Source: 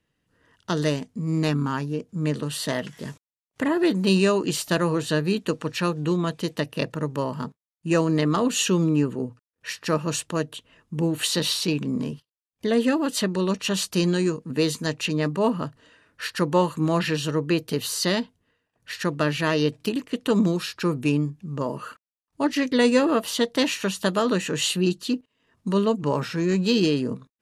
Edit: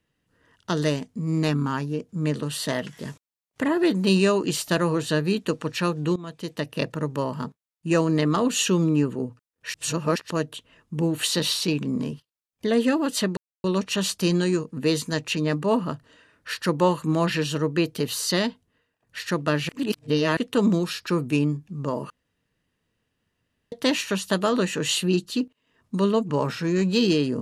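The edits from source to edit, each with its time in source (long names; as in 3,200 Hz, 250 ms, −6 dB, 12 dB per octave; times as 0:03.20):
0:06.16–0:06.78: fade in linear, from −16.5 dB
0:09.74–0:10.30: reverse
0:13.37: splice in silence 0.27 s
0:19.42–0:20.10: reverse
0:21.83–0:23.45: fill with room tone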